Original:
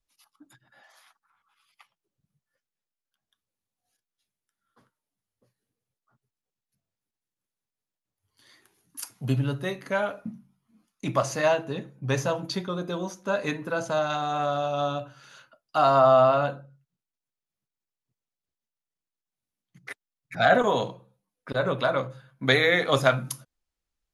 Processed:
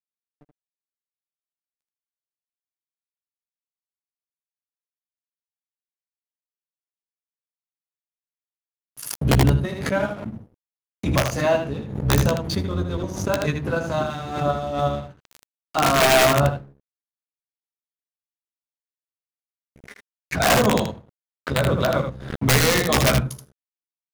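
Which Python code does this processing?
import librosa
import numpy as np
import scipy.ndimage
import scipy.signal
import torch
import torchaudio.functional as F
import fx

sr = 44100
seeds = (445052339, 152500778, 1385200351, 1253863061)

p1 = fx.octave_divider(x, sr, octaves=1, level_db=2.0)
p2 = scipy.signal.sosfilt(scipy.signal.butter(2, 110.0, 'highpass', fs=sr, output='sos'), p1)
p3 = fx.low_shelf(p2, sr, hz=290.0, db=10.0)
p4 = fx.hum_notches(p3, sr, base_hz=50, count=6)
p5 = fx.level_steps(p4, sr, step_db=23)
p6 = p4 + F.gain(torch.from_numpy(p5), 1.0).numpy()
p7 = (np.mod(10.0 ** (6.0 / 20.0) * p6 + 1.0, 2.0) - 1.0) / 10.0 ** (6.0 / 20.0)
p8 = fx.quant_float(p7, sr, bits=8)
p9 = np.sign(p8) * np.maximum(np.abs(p8) - 10.0 ** (-37.5 / 20.0), 0.0)
p10 = p9 + fx.room_early_taps(p9, sr, ms=(14, 79), db=(-6.5, -6.5), dry=0)
p11 = fx.pre_swell(p10, sr, db_per_s=71.0)
y = F.gain(torch.from_numpy(p11), -5.0).numpy()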